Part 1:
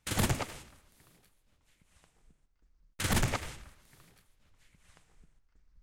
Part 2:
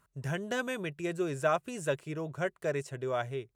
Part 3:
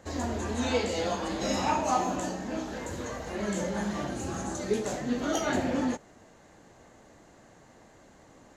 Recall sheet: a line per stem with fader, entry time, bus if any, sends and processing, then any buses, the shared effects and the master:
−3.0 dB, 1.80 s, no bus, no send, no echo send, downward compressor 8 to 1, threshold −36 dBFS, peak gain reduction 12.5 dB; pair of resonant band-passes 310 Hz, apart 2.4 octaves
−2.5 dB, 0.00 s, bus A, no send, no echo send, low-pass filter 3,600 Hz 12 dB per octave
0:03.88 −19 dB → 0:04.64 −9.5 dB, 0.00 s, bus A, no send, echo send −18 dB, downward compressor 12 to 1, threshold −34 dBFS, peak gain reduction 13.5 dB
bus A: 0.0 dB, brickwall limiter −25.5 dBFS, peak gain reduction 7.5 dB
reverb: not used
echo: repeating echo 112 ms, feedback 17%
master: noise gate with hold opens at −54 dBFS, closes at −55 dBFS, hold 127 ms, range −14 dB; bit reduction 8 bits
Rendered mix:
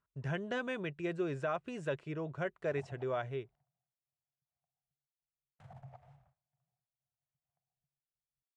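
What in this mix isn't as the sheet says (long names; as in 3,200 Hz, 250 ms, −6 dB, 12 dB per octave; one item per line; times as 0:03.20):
stem 1: entry 1.80 s → 2.60 s
stem 3: muted
master: missing bit reduction 8 bits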